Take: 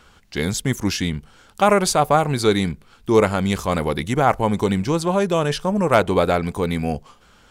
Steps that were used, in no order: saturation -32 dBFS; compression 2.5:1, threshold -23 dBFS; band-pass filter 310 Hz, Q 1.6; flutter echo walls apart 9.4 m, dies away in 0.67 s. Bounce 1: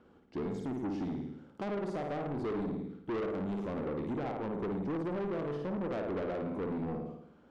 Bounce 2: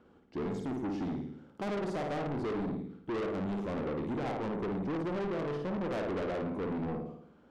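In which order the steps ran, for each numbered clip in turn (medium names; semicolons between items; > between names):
flutter echo > compression > band-pass filter > saturation; band-pass filter > compression > flutter echo > saturation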